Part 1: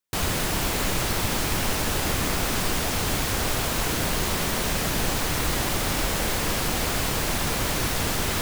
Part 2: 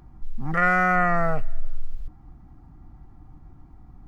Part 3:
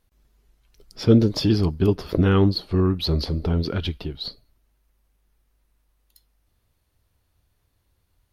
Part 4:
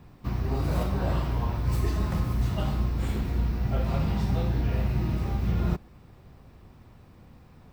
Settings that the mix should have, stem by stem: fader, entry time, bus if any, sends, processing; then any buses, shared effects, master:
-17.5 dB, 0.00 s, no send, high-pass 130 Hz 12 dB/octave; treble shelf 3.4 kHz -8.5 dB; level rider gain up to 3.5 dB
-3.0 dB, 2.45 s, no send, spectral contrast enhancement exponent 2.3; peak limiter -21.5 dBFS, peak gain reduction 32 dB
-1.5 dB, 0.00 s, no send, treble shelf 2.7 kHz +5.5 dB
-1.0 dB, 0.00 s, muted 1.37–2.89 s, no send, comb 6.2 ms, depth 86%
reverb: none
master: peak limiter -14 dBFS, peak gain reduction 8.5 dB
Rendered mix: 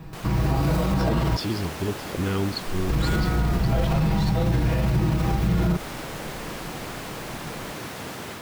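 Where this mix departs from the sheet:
stem 1 -17.5 dB -> -9.5 dB; stem 3 -1.5 dB -> -8.5 dB; stem 4 -1.0 dB -> +8.5 dB

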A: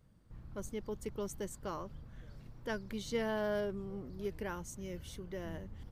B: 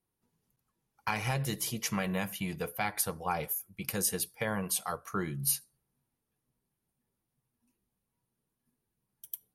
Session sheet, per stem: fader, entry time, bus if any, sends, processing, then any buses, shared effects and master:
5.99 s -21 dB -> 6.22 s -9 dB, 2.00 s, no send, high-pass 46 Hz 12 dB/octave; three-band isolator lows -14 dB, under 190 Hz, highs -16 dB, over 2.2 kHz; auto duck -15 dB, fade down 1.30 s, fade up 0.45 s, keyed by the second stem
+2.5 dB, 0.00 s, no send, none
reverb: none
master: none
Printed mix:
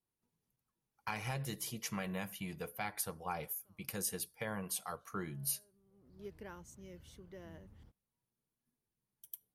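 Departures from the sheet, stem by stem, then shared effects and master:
stem A: missing three-band isolator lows -14 dB, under 190 Hz, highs -16 dB, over 2.2 kHz; stem B +2.5 dB -> -7.5 dB

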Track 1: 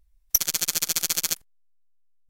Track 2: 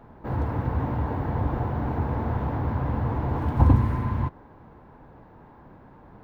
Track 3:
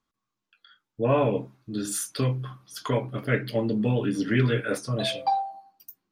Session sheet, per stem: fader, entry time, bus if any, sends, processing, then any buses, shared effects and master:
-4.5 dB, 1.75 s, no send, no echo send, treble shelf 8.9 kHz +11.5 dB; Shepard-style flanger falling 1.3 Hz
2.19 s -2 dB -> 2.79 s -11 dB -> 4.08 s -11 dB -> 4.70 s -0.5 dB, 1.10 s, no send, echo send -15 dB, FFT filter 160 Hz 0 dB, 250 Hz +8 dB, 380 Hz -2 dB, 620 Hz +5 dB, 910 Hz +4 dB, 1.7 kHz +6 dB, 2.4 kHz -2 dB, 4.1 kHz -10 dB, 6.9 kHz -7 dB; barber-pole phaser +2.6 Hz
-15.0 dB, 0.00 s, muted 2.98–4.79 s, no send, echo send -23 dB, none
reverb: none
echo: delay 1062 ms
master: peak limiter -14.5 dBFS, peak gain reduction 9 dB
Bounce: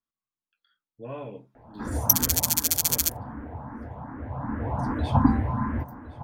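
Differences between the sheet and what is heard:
stem 1: missing Shepard-style flanger falling 1.3 Hz; stem 2: entry 1.10 s -> 1.55 s; master: missing peak limiter -14.5 dBFS, peak gain reduction 9 dB

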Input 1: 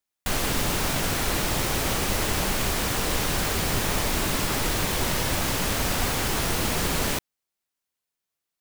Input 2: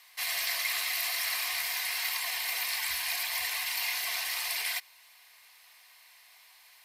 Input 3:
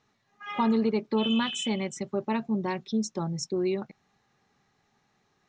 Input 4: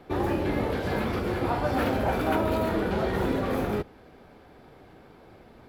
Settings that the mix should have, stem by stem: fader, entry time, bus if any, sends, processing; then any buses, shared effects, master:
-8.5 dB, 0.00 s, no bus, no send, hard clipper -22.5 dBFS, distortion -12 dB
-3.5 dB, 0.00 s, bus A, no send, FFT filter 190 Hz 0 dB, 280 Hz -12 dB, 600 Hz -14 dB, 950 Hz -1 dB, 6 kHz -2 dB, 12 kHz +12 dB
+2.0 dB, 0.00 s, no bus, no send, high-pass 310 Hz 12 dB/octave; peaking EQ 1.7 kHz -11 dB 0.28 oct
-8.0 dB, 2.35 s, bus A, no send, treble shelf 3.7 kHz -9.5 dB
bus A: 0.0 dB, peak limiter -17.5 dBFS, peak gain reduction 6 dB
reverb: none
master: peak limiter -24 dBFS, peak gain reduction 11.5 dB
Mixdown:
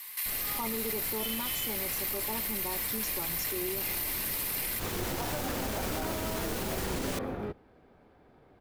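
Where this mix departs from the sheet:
stem 2 -3.5 dB -> +7.5 dB; stem 4: entry 2.35 s -> 3.70 s

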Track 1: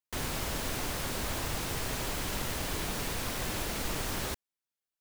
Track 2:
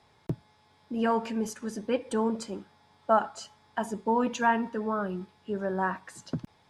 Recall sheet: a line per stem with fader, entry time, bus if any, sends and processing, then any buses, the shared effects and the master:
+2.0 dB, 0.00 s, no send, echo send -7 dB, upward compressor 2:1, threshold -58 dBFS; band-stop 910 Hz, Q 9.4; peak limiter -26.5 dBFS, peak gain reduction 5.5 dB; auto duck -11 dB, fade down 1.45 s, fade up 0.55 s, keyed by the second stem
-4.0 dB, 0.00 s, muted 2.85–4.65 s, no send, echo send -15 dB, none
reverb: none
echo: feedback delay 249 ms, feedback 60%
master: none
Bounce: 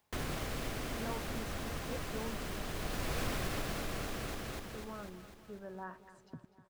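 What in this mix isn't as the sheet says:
stem 2 -4.0 dB -> -16.0 dB; master: extra treble shelf 3.5 kHz -8.5 dB

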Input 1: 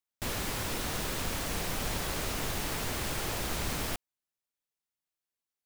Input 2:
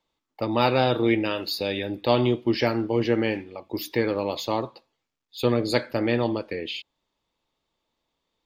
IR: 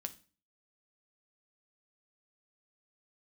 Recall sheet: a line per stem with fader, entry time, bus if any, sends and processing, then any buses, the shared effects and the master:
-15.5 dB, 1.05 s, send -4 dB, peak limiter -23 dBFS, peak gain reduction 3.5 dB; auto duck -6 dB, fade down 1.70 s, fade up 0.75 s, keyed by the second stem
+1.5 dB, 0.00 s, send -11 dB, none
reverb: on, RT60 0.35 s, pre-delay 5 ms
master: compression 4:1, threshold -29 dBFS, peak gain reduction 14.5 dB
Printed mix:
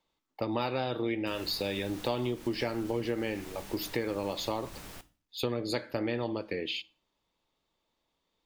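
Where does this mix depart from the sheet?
stem 2 +1.5 dB -> -4.5 dB; reverb return +6.5 dB

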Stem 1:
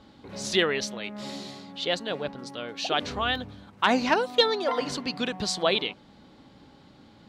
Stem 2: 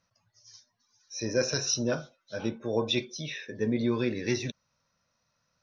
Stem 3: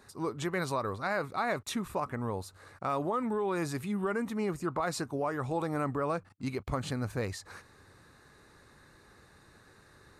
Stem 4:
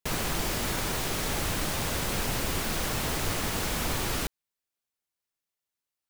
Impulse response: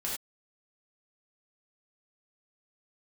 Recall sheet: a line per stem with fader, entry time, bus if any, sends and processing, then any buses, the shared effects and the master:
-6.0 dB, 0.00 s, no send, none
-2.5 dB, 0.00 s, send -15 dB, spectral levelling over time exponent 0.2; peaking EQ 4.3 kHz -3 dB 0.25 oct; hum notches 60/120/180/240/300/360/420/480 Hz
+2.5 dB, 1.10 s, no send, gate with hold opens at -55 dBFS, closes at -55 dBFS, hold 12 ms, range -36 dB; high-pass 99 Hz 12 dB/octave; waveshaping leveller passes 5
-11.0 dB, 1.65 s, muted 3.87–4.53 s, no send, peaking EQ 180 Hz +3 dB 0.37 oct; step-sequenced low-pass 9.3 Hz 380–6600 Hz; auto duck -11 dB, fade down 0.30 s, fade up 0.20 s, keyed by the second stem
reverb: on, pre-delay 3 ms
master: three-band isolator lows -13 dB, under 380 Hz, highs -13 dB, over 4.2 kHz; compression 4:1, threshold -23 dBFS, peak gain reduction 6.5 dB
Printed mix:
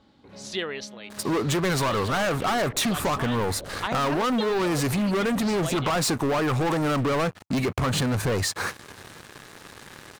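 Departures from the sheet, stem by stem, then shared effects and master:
stem 2: muted; reverb: off; master: missing three-band isolator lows -13 dB, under 380 Hz, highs -13 dB, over 4.2 kHz

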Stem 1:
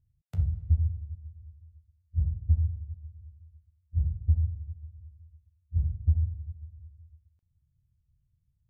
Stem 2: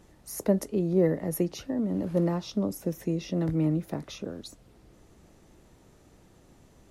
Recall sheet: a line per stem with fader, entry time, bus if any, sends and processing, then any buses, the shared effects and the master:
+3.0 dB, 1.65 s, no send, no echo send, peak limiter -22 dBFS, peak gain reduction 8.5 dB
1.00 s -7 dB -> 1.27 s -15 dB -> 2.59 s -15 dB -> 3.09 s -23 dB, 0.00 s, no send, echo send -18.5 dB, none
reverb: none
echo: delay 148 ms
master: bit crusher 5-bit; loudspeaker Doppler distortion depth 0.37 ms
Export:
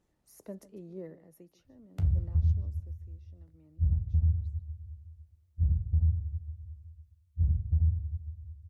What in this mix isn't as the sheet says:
stem 2 -7.0 dB -> -19.0 dB; master: missing bit crusher 5-bit

